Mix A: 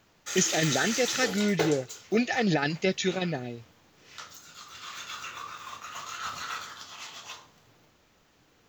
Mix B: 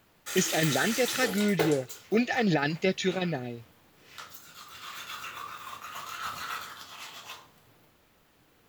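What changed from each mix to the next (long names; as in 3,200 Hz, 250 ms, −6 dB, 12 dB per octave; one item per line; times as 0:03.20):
master: add high shelf with overshoot 7,800 Hz +6.5 dB, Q 3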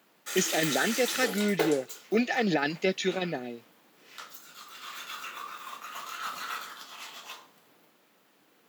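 master: add high-pass filter 190 Hz 24 dB per octave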